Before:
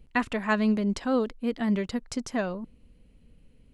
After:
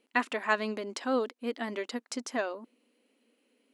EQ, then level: brick-wall FIR high-pass 220 Hz; low shelf 290 Hz -9 dB; 0.0 dB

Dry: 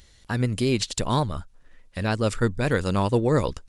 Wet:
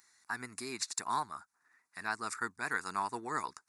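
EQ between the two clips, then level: HPF 610 Hz 12 dB/oct; fixed phaser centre 1300 Hz, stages 4; -3.0 dB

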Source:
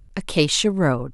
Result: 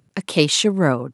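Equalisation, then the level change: HPF 130 Hz 24 dB/oct; +2.0 dB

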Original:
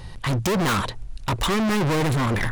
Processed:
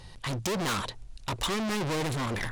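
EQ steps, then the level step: low shelf 440 Hz -11 dB; bell 1500 Hz -7 dB 2.5 oct; high shelf 11000 Hz -10.5 dB; 0.0 dB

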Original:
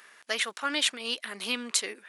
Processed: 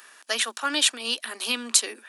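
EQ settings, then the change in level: rippled Chebyshev high-pass 220 Hz, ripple 3 dB; high shelf 4200 Hz +9 dB; notch 2100 Hz, Q 7.9; +4.0 dB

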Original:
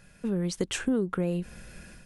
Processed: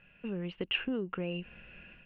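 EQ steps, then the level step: synth low-pass 2800 Hz, resonance Q 13; air absorption 480 m; low shelf 240 Hz -6 dB; -4.5 dB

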